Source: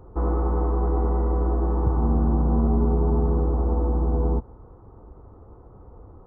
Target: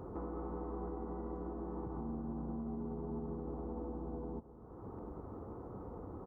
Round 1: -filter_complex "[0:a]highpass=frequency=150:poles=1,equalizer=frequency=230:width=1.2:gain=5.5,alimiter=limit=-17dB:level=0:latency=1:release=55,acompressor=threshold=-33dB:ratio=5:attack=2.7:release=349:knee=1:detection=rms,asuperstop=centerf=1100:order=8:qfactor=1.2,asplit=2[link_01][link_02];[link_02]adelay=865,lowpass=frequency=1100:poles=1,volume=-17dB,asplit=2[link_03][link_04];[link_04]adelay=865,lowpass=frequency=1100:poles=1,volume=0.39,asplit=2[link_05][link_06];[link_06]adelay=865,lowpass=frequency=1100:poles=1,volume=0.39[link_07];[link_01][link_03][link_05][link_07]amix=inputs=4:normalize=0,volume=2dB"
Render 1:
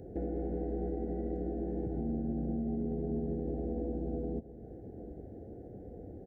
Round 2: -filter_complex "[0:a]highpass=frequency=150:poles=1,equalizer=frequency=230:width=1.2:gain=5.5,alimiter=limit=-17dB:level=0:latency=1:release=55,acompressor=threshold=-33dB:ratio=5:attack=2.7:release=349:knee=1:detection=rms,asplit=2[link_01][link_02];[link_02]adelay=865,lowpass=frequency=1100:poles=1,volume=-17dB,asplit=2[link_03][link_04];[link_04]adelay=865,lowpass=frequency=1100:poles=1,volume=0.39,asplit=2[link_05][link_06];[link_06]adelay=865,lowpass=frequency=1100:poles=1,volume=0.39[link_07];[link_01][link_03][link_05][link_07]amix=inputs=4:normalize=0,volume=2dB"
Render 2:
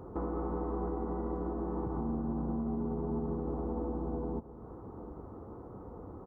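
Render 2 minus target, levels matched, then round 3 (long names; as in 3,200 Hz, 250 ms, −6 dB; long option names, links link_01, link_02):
downward compressor: peak gain reduction −7 dB
-filter_complex "[0:a]highpass=frequency=150:poles=1,equalizer=frequency=230:width=1.2:gain=5.5,alimiter=limit=-17dB:level=0:latency=1:release=55,acompressor=threshold=-41.5dB:ratio=5:attack=2.7:release=349:knee=1:detection=rms,asplit=2[link_01][link_02];[link_02]adelay=865,lowpass=frequency=1100:poles=1,volume=-17dB,asplit=2[link_03][link_04];[link_04]adelay=865,lowpass=frequency=1100:poles=1,volume=0.39,asplit=2[link_05][link_06];[link_06]adelay=865,lowpass=frequency=1100:poles=1,volume=0.39[link_07];[link_01][link_03][link_05][link_07]amix=inputs=4:normalize=0,volume=2dB"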